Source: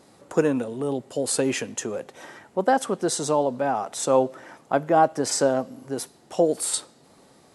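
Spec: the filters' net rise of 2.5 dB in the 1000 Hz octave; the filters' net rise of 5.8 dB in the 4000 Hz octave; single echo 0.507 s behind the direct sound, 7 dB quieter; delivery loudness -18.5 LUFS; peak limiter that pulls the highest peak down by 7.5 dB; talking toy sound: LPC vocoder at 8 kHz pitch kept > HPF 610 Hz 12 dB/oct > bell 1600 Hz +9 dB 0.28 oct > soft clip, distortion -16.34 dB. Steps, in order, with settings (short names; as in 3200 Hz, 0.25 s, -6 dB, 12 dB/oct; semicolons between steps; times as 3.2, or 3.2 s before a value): bell 1000 Hz +4.5 dB; bell 4000 Hz +7 dB; limiter -12 dBFS; echo 0.507 s -7 dB; LPC vocoder at 8 kHz pitch kept; HPF 610 Hz 12 dB/oct; bell 1600 Hz +9 dB 0.28 oct; soft clip -17 dBFS; gain +12 dB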